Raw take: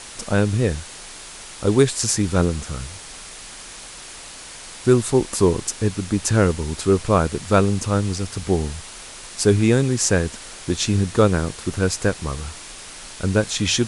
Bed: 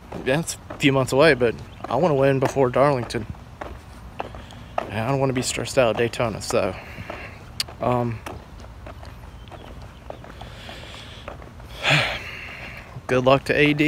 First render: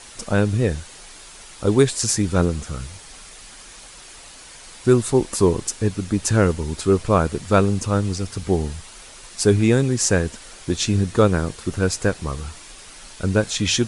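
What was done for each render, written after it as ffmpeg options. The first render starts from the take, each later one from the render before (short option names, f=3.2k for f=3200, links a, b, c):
-af "afftdn=nr=6:nf=-39"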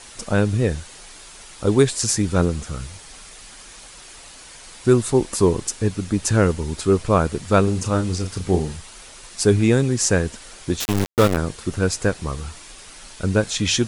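-filter_complex "[0:a]asettb=1/sr,asplit=3[a][b][c];[a]atrim=end=7.644[d];[b]atrim=start=7.64:end=8.77,asetpts=PTS-STARTPTS,afade=t=in:d=0.004:c=qsin,afade=t=out:st=1.126:d=0.004:c=qsin,asplit=2[e][f];[f]adelay=33,volume=-7dB[g];[e][g]amix=inputs=2:normalize=0,atrim=end_sample=49833[h];[c]atrim=start=8.766[i];[d][h]acrossfade=d=0.004:c1=hsin:c2=qsin[j];[j][i]acrossfade=d=0.004:c1=qsin:c2=hsin,asplit=3[k][l][m];[k]afade=t=out:st=10.79:d=0.02[n];[l]aeval=exprs='val(0)*gte(abs(val(0)),0.141)':c=same,afade=t=in:st=10.79:d=0.02,afade=t=out:st=11.36:d=0.02[o];[m]afade=t=in:st=11.36:d=0.02[p];[n][o][p]amix=inputs=3:normalize=0"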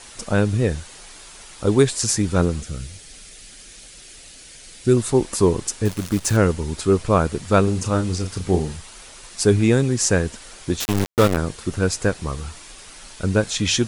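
-filter_complex "[0:a]asettb=1/sr,asplit=3[a][b][c];[a]atrim=end=2.614[d];[b]atrim=start=2.61:end=4.97,asetpts=PTS-STARTPTS,afade=t=in:d=0.004:c=qsin,afade=t=out:st=2.356:d=0.004:c=qsin,equalizer=f=1k:t=o:w=1:g=-13[e];[c]atrim=start=4.966[f];[d][e]acrossfade=d=0.004:c1=hsin:c2=qsin[g];[g][f]acrossfade=d=0.004:c1=qsin:c2=hsin,asettb=1/sr,asplit=3[h][i][j];[h]atrim=end=5.854[k];[i]atrim=start=5.85:end=6.37,asetpts=PTS-STARTPTS,afade=t=in:d=0.004:c=qsin,afade=t=out:st=0.516:d=0.004:c=qsin,acrusher=bits=6:dc=4:mix=0:aa=0.000001[l];[j]atrim=start=6.366[m];[k][l]acrossfade=d=0.004:c1=hsin:c2=qsin[n];[n][m]acrossfade=d=0.004:c1=qsin:c2=hsin"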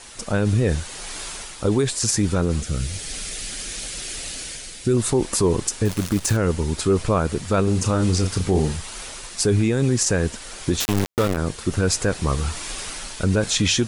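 -af "dynaudnorm=f=110:g=7:m=11.5dB,alimiter=limit=-10dB:level=0:latency=1:release=33"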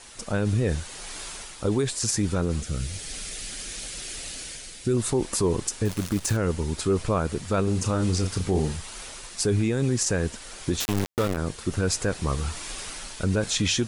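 -af "volume=-4.5dB"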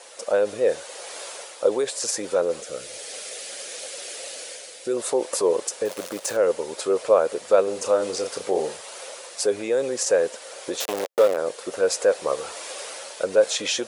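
-af "highpass=f=530:t=q:w=5"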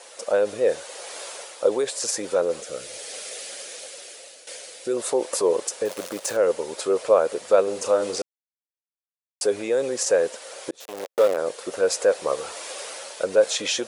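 -filter_complex "[0:a]asplit=5[a][b][c][d][e];[a]atrim=end=4.47,asetpts=PTS-STARTPTS,afade=t=out:st=3.41:d=1.06:silence=0.223872[f];[b]atrim=start=4.47:end=8.22,asetpts=PTS-STARTPTS,afade=t=in:d=0.004:c=hsin:silence=0.223872,afade=t=out:st=3.746:d=0.004:c=hsin[g];[c]atrim=start=8.22:end=9.41,asetpts=PTS-STARTPTS,volume=0[h];[d]atrim=start=9.41:end=10.71,asetpts=PTS-STARTPTS,afade=t=in:d=0.004:c=hsin,afade=t=out:st=1.296:d=0.004:c=hsin[i];[e]atrim=start=10.71,asetpts=PTS-STARTPTS,afade=t=in:d=0.58[j];[f][g][h][i][j]concat=n=5:v=0:a=1"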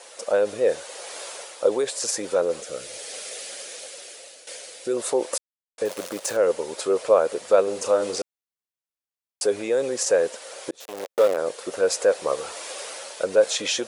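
-filter_complex "[0:a]asplit=3[a][b][c];[a]atrim=end=5.38,asetpts=PTS-STARTPTS,afade=t=out:st=5.376:d=0.004:c=hsin[d];[b]atrim=start=5.38:end=5.78,asetpts=PTS-STARTPTS,volume=0[e];[c]atrim=start=5.78,asetpts=PTS-STARTPTS,afade=t=in:d=0.004:c=hsin[f];[d][e][f]concat=n=3:v=0:a=1"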